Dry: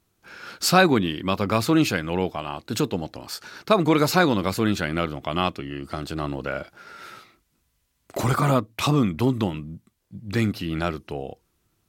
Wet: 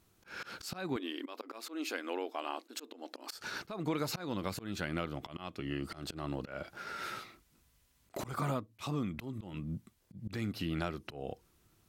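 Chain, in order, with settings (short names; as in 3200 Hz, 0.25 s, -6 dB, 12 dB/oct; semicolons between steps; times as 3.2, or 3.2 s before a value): compressor 6:1, threshold -33 dBFS, peak gain reduction 20 dB; auto swell 0.165 s; 0.96–3.32 brick-wall FIR high-pass 240 Hz; gain +1 dB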